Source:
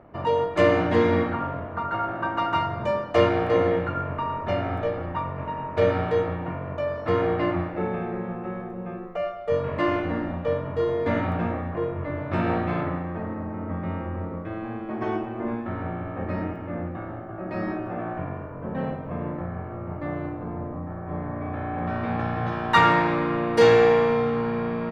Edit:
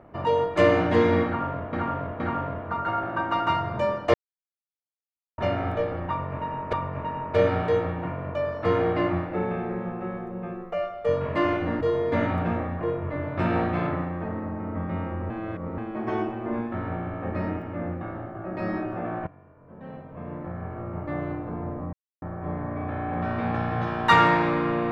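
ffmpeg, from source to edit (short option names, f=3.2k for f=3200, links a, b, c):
-filter_complex "[0:a]asplit=11[a][b][c][d][e][f][g][h][i][j][k];[a]atrim=end=1.732[l];[b]atrim=start=1.258:end=1.732[m];[c]atrim=start=1.258:end=3.2,asetpts=PTS-STARTPTS,afade=t=out:st=1.938:d=0.004:c=hsin[n];[d]atrim=start=3.2:end=4.44,asetpts=PTS-STARTPTS,volume=0[o];[e]atrim=start=4.44:end=5.792,asetpts=PTS-STARTPTS,afade=t=in:d=0.004:c=hsin[p];[f]atrim=start=5.158:end=10.242[q];[g]atrim=start=10.748:end=14.242[r];[h]atrim=start=14.238:end=14.722,asetpts=PTS-STARTPTS,areverse[s];[i]atrim=start=14.718:end=18.21,asetpts=PTS-STARTPTS,afade=t=out:st=3.488:d=0.004:c=hsin:silence=0.105925[t];[j]atrim=start=18.21:end=20.87,asetpts=PTS-STARTPTS,afade=t=in:d=1.51:c=qua:silence=0.105925,afade=t=out:st=2.656:d=0.004:c=hsin,apad=pad_dur=0.29[u];[k]atrim=start=20.87,asetpts=PTS-STARTPTS,afade=t=in:d=0.004:c=hsin[v];[l][m]acrossfade=d=0.004:c1=hsin:c2=hsin[w];[n][o][p]concat=n=3:v=0:a=1[x];[w][x]acrossfade=d=0.004:c1=hsin:c2=hsin[y];[y][q]acrossfade=d=0.004:c1=hsin:c2=hsin[z];[z][r]acrossfade=d=0.004:c1=hsin:c2=hsin[aa];[aa][s]acrossfade=d=0.004:c1=hsin:c2=hsin[ab];[t][u][v]concat=n=3:v=0:a=1[ac];[ab][ac]acrossfade=d=0.004:c1=hsin:c2=hsin"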